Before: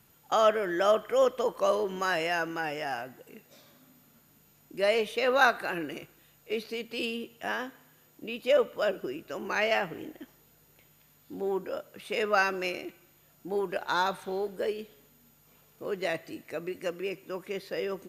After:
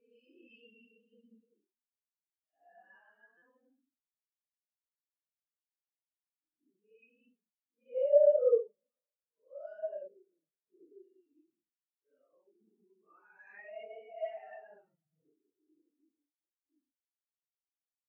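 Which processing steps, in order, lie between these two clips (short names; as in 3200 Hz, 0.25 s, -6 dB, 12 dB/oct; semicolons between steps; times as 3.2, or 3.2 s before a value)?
Paulstretch 5.1×, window 0.05 s, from 6.93; stuck buffer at 3.37/11.21, samples 256, times 8; spectral expander 2.5:1; gain -2.5 dB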